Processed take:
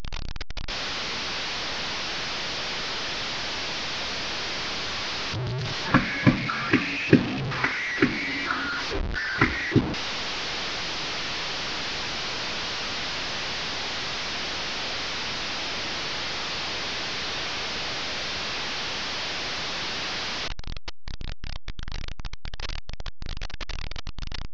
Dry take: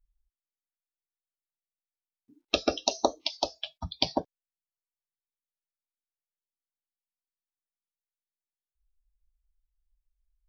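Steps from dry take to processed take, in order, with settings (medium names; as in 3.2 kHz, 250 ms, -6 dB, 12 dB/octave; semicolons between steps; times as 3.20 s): one-bit delta coder 64 kbps, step -28.5 dBFS; speed mistake 78 rpm record played at 33 rpm; trim +6 dB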